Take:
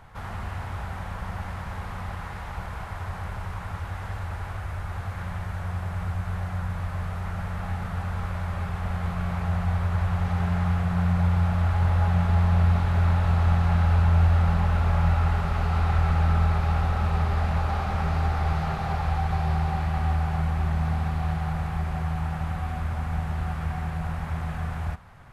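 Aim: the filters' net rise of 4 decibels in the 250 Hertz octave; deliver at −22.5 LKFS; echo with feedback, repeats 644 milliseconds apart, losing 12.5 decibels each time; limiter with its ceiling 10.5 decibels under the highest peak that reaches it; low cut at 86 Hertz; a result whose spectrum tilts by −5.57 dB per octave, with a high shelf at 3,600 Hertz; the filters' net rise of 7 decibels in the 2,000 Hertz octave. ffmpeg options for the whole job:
ffmpeg -i in.wav -af "highpass=86,equalizer=frequency=250:width_type=o:gain=8,equalizer=frequency=2000:width_type=o:gain=7.5,highshelf=frequency=3600:gain=5.5,alimiter=limit=-21.5dB:level=0:latency=1,aecho=1:1:644|1288|1932:0.237|0.0569|0.0137,volume=8dB" out.wav

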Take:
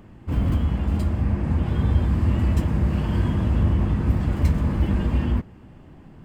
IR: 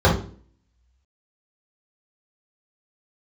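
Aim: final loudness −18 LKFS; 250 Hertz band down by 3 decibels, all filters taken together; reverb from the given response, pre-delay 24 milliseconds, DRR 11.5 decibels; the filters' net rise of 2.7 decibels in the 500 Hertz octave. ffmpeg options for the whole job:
-filter_complex "[0:a]equalizer=frequency=250:width_type=o:gain=-5.5,equalizer=frequency=500:width_type=o:gain=5.5,asplit=2[link_01][link_02];[1:a]atrim=start_sample=2205,adelay=24[link_03];[link_02][link_03]afir=irnorm=-1:irlink=0,volume=-33.5dB[link_04];[link_01][link_04]amix=inputs=2:normalize=0,volume=0.5dB"

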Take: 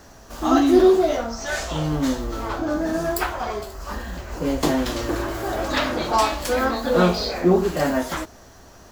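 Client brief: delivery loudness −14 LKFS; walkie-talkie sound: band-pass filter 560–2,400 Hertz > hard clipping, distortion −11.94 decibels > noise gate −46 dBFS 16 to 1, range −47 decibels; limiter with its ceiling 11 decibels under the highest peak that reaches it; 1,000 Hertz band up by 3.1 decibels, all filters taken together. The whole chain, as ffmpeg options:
ffmpeg -i in.wav -af "equalizer=frequency=1000:width_type=o:gain=5,alimiter=limit=-14.5dB:level=0:latency=1,highpass=560,lowpass=2400,asoftclip=type=hard:threshold=-25dB,agate=range=-47dB:threshold=-46dB:ratio=16,volume=16dB" out.wav

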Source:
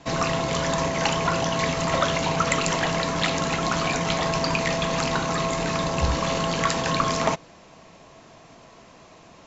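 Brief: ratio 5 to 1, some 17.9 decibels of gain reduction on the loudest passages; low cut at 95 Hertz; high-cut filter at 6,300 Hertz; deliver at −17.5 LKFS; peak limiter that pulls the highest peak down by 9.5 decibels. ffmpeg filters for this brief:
ffmpeg -i in.wav -af "highpass=95,lowpass=6300,acompressor=threshold=-40dB:ratio=5,volume=26.5dB,alimiter=limit=-8dB:level=0:latency=1" out.wav

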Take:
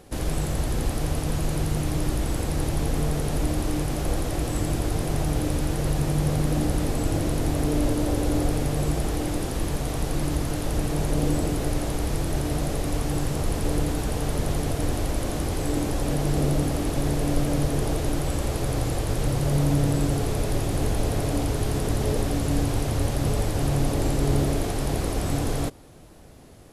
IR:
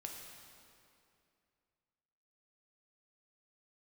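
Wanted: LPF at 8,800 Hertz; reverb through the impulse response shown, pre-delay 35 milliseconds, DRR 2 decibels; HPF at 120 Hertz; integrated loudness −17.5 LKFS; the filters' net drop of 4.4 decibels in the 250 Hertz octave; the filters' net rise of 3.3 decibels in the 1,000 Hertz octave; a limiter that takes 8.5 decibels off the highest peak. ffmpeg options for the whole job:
-filter_complex "[0:a]highpass=120,lowpass=8800,equalizer=frequency=250:width_type=o:gain=-6,equalizer=frequency=1000:width_type=o:gain=5,alimiter=limit=-23dB:level=0:latency=1,asplit=2[link_01][link_02];[1:a]atrim=start_sample=2205,adelay=35[link_03];[link_02][link_03]afir=irnorm=-1:irlink=0,volume=1dB[link_04];[link_01][link_04]amix=inputs=2:normalize=0,volume=12.5dB"

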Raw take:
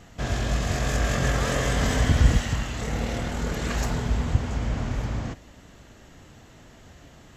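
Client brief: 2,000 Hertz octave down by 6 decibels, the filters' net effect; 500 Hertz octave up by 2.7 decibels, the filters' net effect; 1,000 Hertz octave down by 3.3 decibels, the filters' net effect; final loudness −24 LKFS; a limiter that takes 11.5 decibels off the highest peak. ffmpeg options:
ffmpeg -i in.wav -af "equalizer=frequency=500:width_type=o:gain=5,equalizer=frequency=1000:width_type=o:gain=-5.5,equalizer=frequency=2000:width_type=o:gain=-6,volume=4dB,alimiter=limit=-12dB:level=0:latency=1" out.wav

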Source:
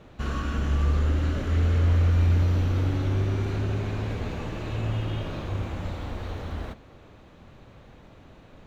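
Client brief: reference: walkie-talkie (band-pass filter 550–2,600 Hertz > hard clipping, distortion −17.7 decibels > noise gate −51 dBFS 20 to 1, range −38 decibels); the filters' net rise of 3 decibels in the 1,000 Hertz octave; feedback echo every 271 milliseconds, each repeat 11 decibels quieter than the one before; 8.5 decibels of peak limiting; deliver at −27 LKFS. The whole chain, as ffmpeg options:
ffmpeg -i in.wav -af "equalizer=frequency=1000:width_type=o:gain=4.5,alimiter=limit=-21dB:level=0:latency=1,highpass=550,lowpass=2600,aecho=1:1:271|542|813:0.282|0.0789|0.0221,asoftclip=type=hard:threshold=-34dB,agate=range=-38dB:threshold=-51dB:ratio=20,volume=13.5dB" out.wav

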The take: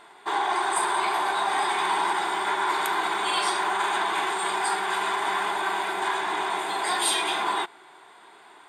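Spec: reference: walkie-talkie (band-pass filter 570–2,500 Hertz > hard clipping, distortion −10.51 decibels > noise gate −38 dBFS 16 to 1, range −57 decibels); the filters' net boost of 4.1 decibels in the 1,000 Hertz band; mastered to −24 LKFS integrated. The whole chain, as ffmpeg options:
ffmpeg -i in.wav -af "highpass=570,lowpass=2500,equalizer=frequency=1000:width_type=o:gain=5.5,asoftclip=type=hard:threshold=-22dB,agate=range=-57dB:threshold=-38dB:ratio=16,volume=1dB" out.wav

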